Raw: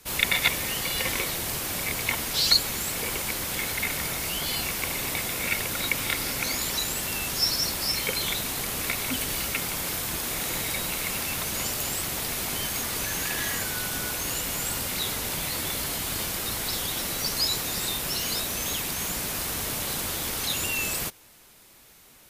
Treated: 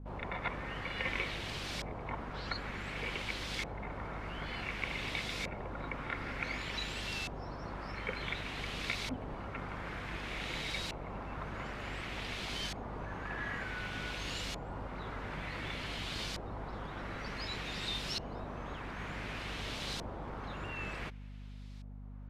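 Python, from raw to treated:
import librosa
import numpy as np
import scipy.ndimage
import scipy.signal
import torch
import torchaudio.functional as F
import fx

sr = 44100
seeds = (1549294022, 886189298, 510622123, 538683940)

y = fx.add_hum(x, sr, base_hz=50, snr_db=10)
y = fx.filter_lfo_lowpass(y, sr, shape='saw_up', hz=0.55, low_hz=770.0, high_hz=4700.0, q=1.4)
y = y * 10.0 ** (-8.0 / 20.0)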